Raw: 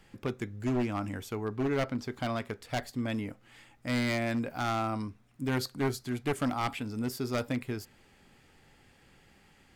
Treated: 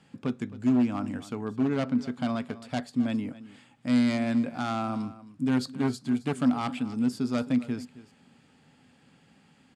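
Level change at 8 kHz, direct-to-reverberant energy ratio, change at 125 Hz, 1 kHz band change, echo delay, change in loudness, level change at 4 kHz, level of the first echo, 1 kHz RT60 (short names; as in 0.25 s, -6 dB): -2.5 dB, none, 0.0 dB, 0.0 dB, 0.266 s, +4.5 dB, -0.5 dB, -17.0 dB, none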